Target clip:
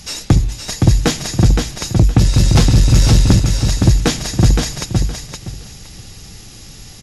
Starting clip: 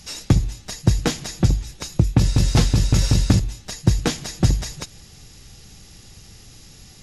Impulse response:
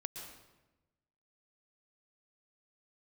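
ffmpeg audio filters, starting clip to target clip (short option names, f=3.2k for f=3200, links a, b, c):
-af "aecho=1:1:517|1034|1551:0.531|0.106|0.0212,acontrast=86"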